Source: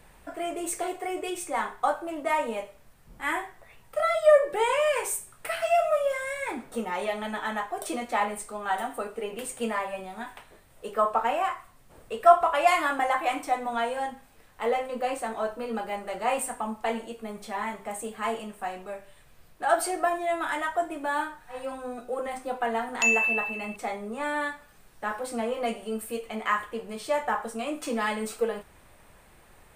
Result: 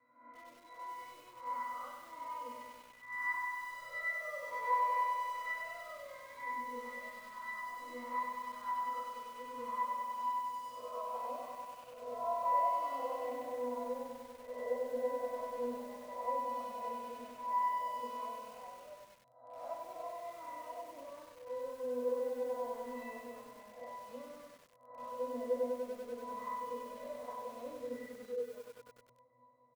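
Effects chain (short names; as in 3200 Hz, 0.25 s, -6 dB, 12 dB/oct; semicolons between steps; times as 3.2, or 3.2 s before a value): spectral swells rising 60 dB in 0.73 s; band-pass sweep 1400 Hz -> 690 Hz, 9.38–11.4; in parallel at -1 dB: compressor 6:1, threshold -35 dBFS, peak gain reduction 21.5 dB; on the sum: octave resonator B, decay 0.45 s; on a send: flutter echo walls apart 5.7 m, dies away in 0.25 s; on the sum: spectral delete 27.76–28.53, 500–1800 Hz; echo 92 ms -14 dB; lo-fi delay 97 ms, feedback 80%, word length 11-bit, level -5 dB; gain +8 dB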